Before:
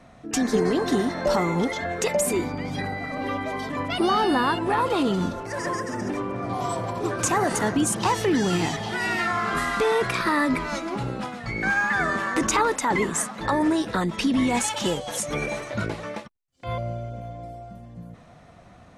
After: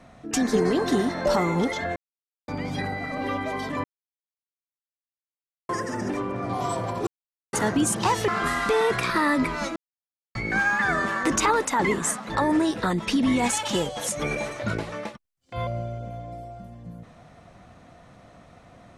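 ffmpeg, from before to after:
-filter_complex "[0:a]asplit=10[a][b][c][d][e][f][g][h][i][j];[a]atrim=end=1.96,asetpts=PTS-STARTPTS,afade=t=out:st=1.956:d=0.004:c=hsin[k];[b]atrim=start=1.96:end=2.48,asetpts=PTS-STARTPTS,volume=0[l];[c]atrim=start=2.48:end=3.84,asetpts=PTS-STARTPTS,afade=t=in:d=0.004:c=hsin,afade=t=out:st=1.356:d=0.004:c=hsin[m];[d]atrim=start=3.84:end=5.69,asetpts=PTS-STARTPTS,volume=0[n];[e]atrim=start=5.69:end=7.07,asetpts=PTS-STARTPTS,afade=t=in:d=0.004:c=hsin,afade=t=out:st=1.376:d=0.004:c=hsin[o];[f]atrim=start=7.07:end=7.53,asetpts=PTS-STARTPTS,volume=0[p];[g]atrim=start=7.53:end=8.282,asetpts=PTS-STARTPTS,afade=t=in:d=0.004:c=hsin[q];[h]atrim=start=9.388:end=10.87,asetpts=PTS-STARTPTS,afade=t=out:st=1.478:d=0.004:c=hsin[r];[i]atrim=start=10.87:end=11.46,asetpts=PTS-STARTPTS,volume=0[s];[j]atrim=start=11.46,asetpts=PTS-STARTPTS,afade=t=in:d=0.004:c=hsin[t];[k][l][m][n][o][p][q]concat=n=7:v=0:a=1[u];[r][s][t]concat=n=3:v=0:a=1[v];[u][v]acrossfade=d=0.004:c1=hsin:c2=hsin"

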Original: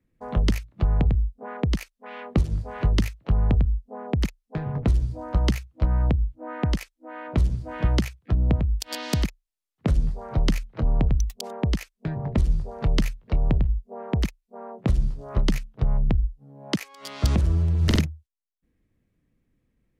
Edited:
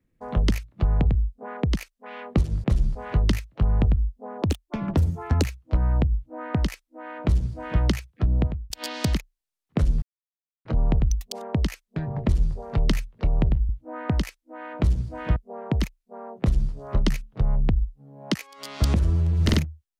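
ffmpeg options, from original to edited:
-filter_complex "[0:a]asplit=10[a][b][c][d][e][f][g][h][i][j];[a]atrim=end=2.642[k];[b]atrim=start=14.818:end=15.132[l];[c]atrim=start=2.638:end=4.114[m];[d]atrim=start=4.11:end=5.53,asetpts=PTS-STARTPTS,asetrate=61299,aresample=44100[n];[e]atrim=start=5.526:end=8.79,asetpts=PTS-STARTPTS,afade=t=out:st=2.934:d=0.33[o];[f]atrim=start=8.79:end=10.11,asetpts=PTS-STARTPTS,afade=t=in:d=0.004:c=hsin,afade=t=out:st=1.316:d=0.004:c=hsin[p];[g]atrim=start=10.11:end=10.74,asetpts=PTS-STARTPTS,volume=0[q];[h]atrim=start=10.74:end=13.782,asetpts=PTS-STARTPTS,afade=t=in:d=0.004:c=hsin[r];[i]atrim=start=6.228:end=7.902[s];[j]atrim=start=13.778[t];[k][l]acrossfade=d=0.004:c1=hsin:c2=hsin[u];[u][m]acrossfade=d=0.004:c1=hsin:c2=hsin[v];[v][n]acrossfade=d=0.004:c1=hsin:c2=hsin[w];[o][p][q][r]concat=n=4:v=0:a=1[x];[w][x]acrossfade=d=0.004:c1=hsin:c2=hsin[y];[y][s]acrossfade=d=0.004:c1=hsin:c2=hsin[z];[z][t]acrossfade=d=0.004:c1=hsin:c2=hsin"

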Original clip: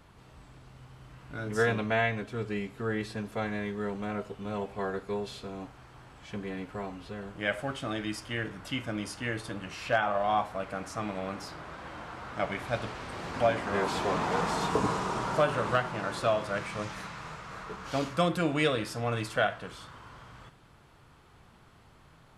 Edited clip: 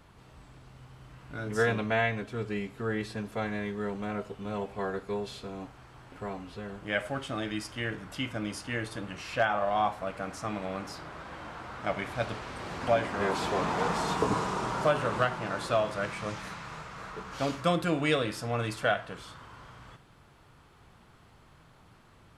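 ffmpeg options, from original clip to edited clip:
-filter_complex "[0:a]asplit=2[a][b];[a]atrim=end=6.122[c];[b]atrim=start=6.648[d];[c][d]acrossfade=d=0.004:c1=hsin:c2=hsin"

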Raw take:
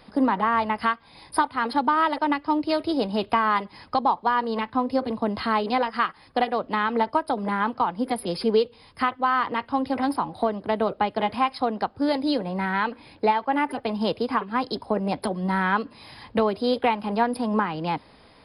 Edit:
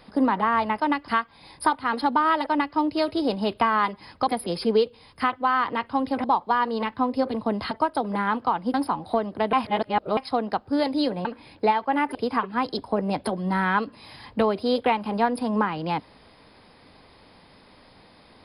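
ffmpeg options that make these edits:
-filter_complex "[0:a]asplit=11[a][b][c][d][e][f][g][h][i][j][k];[a]atrim=end=0.802[l];[b]atrim=start=2.198:end=2.482[m];[c]atrim=start=0.798:end=4.002[n];[d]atrim=start=8.068:end=10.032[o];[e]atrim=start=3.998:end=5.472[p];[f]atrim=start=7.038:end=8.072[q];[g]atrim=start=10.028:end=10.822[r];[h]atrim=start=10.818:end=11.462,asetpts=PTS-STARTPTS,areverse[s];[i]atrim=start=11.458:end=12.542[t];[j]atrim=start=12.848:end=13.752[u];[k]atrim=start=14.128[v];[l][m]acrossfade=d=0.004:c1=hsin:c2=hsin[w];[w][n]acrossfade=d=0.004:c1=hsin:c2=hsin[x];[x][o]acrossfade=d=0.004:c1=hsin:c2=hsin[y];[y][p]acrossfade=d=0.004:c1=hsin:c2=hsin[z];[z][q]acrossfade=d=0.004:c1=hsin:c2=hsin[aa];[aa][r]acrossfade=d=0.004:c1=hsin:c2=hsin[ab];[ab][s]acrossfade=d=0.004:c1=hsin:c2=hsin[ac];[ac][t]acrossfade=d=0.004:c1=hsin:c2=hsin[ad];[ad][u]acrossfade=d=0.004:c1=hsin:c2=hsin[ae];[ae][v]acrossfade=d=0.004:c1=hsin:c2=hsin"

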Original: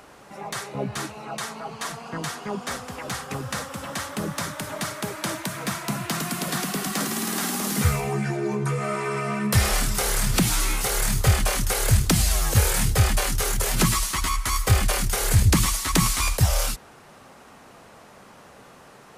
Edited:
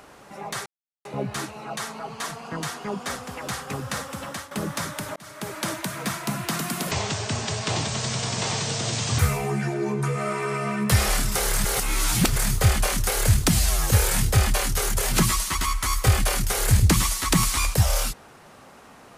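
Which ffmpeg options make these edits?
-filter_complex "[0:a]asplit=8[a][b][c][d][e][f][g][h];[a]atrim=end=0.66,asetpts=PTS-STARTPTS,afade=t=out:st=0.656:d=0.004:c=hsin,apad=pad_dur=0.39[i];[b]atrim=start=0.66:end=4.12,asetpts=PTS-STARTPTS,afade=t=in:d=0.004:c=hsin,afade=t=out:st=3.2:d=0.26:silence=0.237137[j];[c]atrim=start=4.12:end=4.77,asetpts=PTS-STARTPTS,afade=t=in:d=0.004:c=hsin:silence=0.237137,afade=t=out:st=0.646:d=0.004:c=hsin[k];[d]atrim=start=4.77:end=6.524,asetpts=PTS-STARTPTS,afade=t=in:d=0.4[l];[e]atrim=start=6.52:end=7.82,asetpts=PTS-STARTPTS,asetrate=25137,aresample=44100[m];[f]atrim=start=7.816:end=10.282[n];[g]atrim=start=10.278:end=10.992,asetpts=PTS-STARTPTS,areverse[o];[h]atrim=start=10.988[p];[i][j][k][l]concat=n=4:v=0:a=1[q];[q][m]acrossfade=d=0.004:c1=hsin:c2=hsin[r];[r][n]acrossfade=d=0.004:c1=hsin:c2=hsin[s];[s][o]acrossfade=d=0.004:c1=hsin:c2=hsin[t];[t][p]acrossfade=d=0.004:c1=hsin:c2=hsin"

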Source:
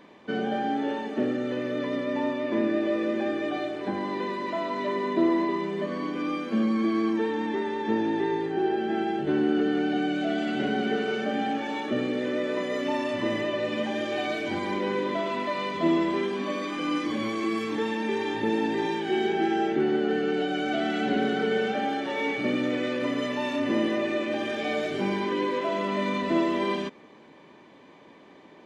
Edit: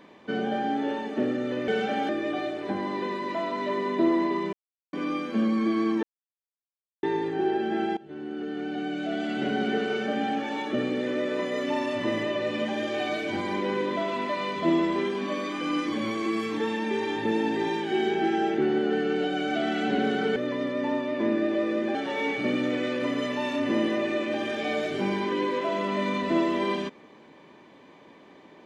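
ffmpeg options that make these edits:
-filter_complex "[0:a]asplit=10[a][b][c][d][e][f][g][h][i][j];[a]atrim=end=1.682[k];[b]atrim=start=21.538:end=21.952[l];[c]atrim=start=3.268:end=5.71,asetpts=PTS-STARTPTS,afade=t=out:st=2.438:d=0.004:c=hsin[m];[d]atrim=start=5.71:end=6.11,asetpts=PTS-STARTPTS,volume=0[n];[e]atrim=start=6.11:end=7.21,asetpts=PTS-STARTPTS,afade=t=in:d=0.004:c=hsin,afade=t=out:st=1.096:d=0.004:c=hsin[o];[f]atrim=start=7.21:end=8.21,asetpts=PTS-STARTPTS,volume=0[p];[g]atrim=start=8.21:end=9.15,asetpts=PTS-STARTPTS,afade=t=in:d=0.004:c=hsin,afade=t=out:st=0.936:d=0.004:c=hsin:silence=0.0841395[q];[h]atrim=start=9.15:end=21.542,asetpts=PTS-STARTPTS,afade=t=in:d=1.62:silence=0.0841395[r];[i]atrim=start=1.678:end=3.272[s];[j]atrim=start=21.948[t];[k][l]acrossfade=d=0.004:c1=hsin:c2=hsin[u];[m][n][o][p][q][r]concat=n=6:v=0:a=1[v];[u][v]acrossfade=d=0.004:c1=hsin:c2=hsin[w];[w][s]acrossfade=d=0.004:c1=hsin:c2=hsin[x];[x][t]acrossfade=d=0.004:c1=hsin:c2=hsin"

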